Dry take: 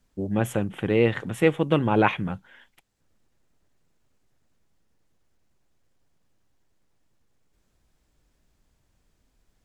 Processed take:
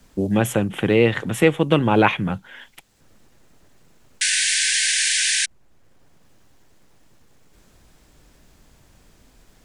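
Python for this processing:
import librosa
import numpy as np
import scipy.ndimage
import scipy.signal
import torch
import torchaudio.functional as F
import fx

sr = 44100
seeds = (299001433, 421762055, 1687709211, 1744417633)

y = fx.spec_paint(x, sr, seeds[0], shape='noise', start_s=4.21, length_s=1.25, low_hz=1500.0, high_hz=10000.0, level_db=-26.0)
y = fx.band_squash(y, sr, depth_pct=40)
y = F.gain(torch.from_numpy(y), 5.0).numpy()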